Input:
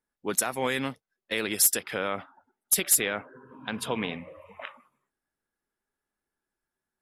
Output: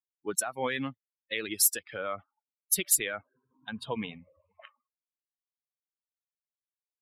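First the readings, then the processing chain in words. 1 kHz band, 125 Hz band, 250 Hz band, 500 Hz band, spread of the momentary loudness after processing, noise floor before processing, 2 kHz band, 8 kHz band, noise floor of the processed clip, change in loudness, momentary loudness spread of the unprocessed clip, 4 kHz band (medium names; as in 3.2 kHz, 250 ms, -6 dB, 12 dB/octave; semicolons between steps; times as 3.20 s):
-4.0 dB, -4.5 dB, -4.0 dB, -4.5 dB, 17 LU, under -85 dBFS, -4.0 dB, -3.0 dB, under -85 dBFS, -2.5 dB, 21 LU, -4.0 dB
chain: expander on every frequency bin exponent 2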